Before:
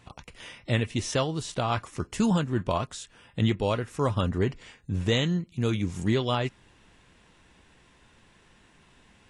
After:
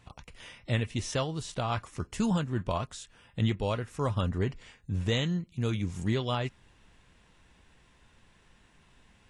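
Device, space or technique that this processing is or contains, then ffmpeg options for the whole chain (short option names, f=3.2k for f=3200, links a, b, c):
low shelf boost with a cut just above: -af "lowshelf=f=70:g=7,equalizer=f=330:t=o:w=0.81:g=-2.5,volume=-4dB"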